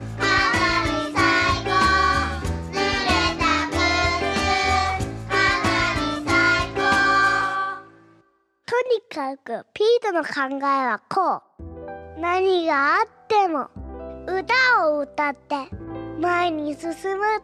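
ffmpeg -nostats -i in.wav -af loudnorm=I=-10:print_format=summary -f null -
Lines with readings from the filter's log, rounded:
Input Integrated:    -20.9 LUFS
Input True Peak:      -5.7 dBTP
Input LRA:             2.7 LU
Input Threshold:     -31.5 LUFS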